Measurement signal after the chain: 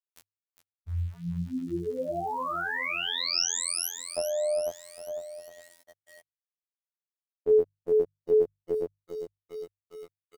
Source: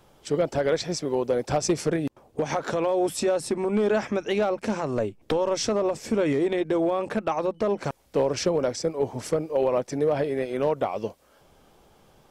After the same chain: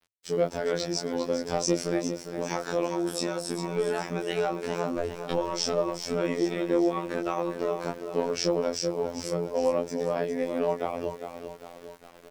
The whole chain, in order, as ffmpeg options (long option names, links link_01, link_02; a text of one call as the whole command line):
ffmpeg -i in.wav -af "aecho=1:1:404|808|1212|1616|2020|2424:0.355|0.181|0.0923|0.0471|0.024|0.0122,flanger=delay=19:depth=2.7:speed=0.2,aeval=exprs='val(0)*gte(abs(val(0)),0.00398)':channel_layout=same,afftfilt=real='hypot(re,im)*cos(PI*b)':imag='0':win_size=2048:overlap=0.75,adynamicequalizer=threshold=0.00141:dfrequency=5300:dqfactor=5.4:tfrequency=5300:tqfactor=5.4:attack=5:release=100:ratio=0.375:range=3.5:mode=boostabove:tftype=bell,bandreject=frequency=50:width_type=h:width=6,bandreject=frequency=100:width_type=h:width=6,bandreject=frequency=150:width_type=h:width=6,volume=3dB" out.wav